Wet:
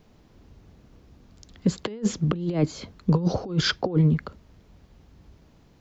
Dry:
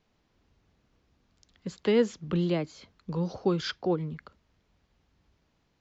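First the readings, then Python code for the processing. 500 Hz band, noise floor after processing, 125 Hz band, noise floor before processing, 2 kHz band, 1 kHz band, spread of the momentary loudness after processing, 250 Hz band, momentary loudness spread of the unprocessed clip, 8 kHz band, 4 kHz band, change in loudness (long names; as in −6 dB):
−2.0 dB, −57 dBFS, +10.0 dB, −73 dBFS, +6.0 dB, +4.0 dB, 7 LU, +5.0 dB, 17 LU, can't be measured, +8.0 dB, +4.0 dB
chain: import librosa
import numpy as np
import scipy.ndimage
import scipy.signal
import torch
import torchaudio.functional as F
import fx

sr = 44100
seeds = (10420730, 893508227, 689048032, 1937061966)

y = fx.tilt_shelf(x, sr, db=5.5, hz=850.0)
y = fx.over_compress(y, sr, threshold_db=-28.0, ratio=-0.5)
y = fx.high_shelf(y, sr, hz=5600.0, db=8.0)
y = y * 10.0 ** (6.5 / 20.0)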